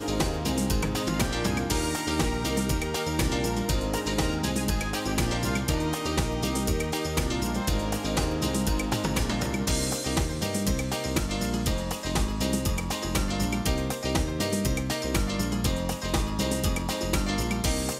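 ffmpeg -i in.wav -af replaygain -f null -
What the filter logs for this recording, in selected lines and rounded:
track_gain = +10.3 dB
track_peak = 0.192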